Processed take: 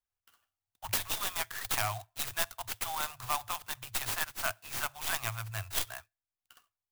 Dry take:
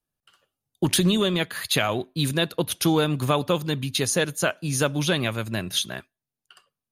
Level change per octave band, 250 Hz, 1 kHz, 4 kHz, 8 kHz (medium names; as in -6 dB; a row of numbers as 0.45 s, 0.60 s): -29.5 dB, -6.0 dB, -12.0 dB, -7.5 dB